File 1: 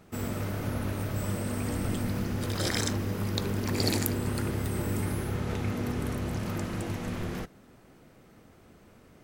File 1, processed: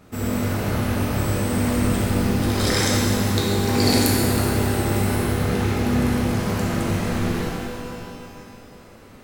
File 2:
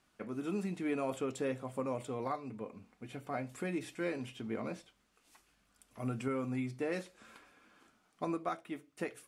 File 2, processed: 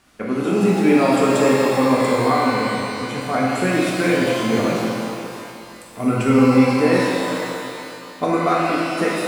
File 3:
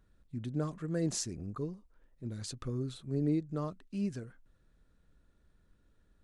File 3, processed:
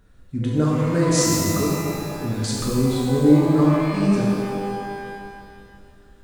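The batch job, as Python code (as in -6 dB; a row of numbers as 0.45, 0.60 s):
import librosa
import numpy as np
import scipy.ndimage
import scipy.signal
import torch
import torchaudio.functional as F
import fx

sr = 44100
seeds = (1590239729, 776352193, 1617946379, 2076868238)

y = fx.echo_bbd(x, sr, ms=177, stages=2048, feedback_pct=63, wet_db=-11)
y = fx.rev_shimmer(y, sr, seeds[0], rt60_s=2.1, semitones=12, shimmer_db=-8, drr_db=-4.0)
y = librosa.util.normalize(y) * 10.0 ** (-3 / 20.0)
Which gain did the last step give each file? +4.0, +14.5, +11.0 dB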